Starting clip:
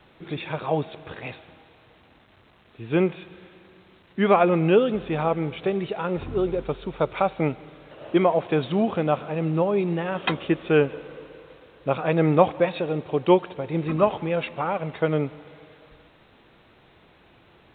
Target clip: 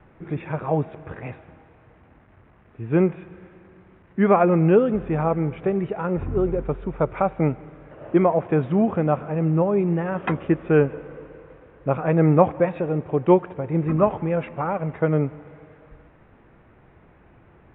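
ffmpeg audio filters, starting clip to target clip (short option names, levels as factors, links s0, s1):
-af "lowpass=f=2100:w=0.5412,lowpass=f=2100:w=1.3066,lowshelf=f=180:g=9"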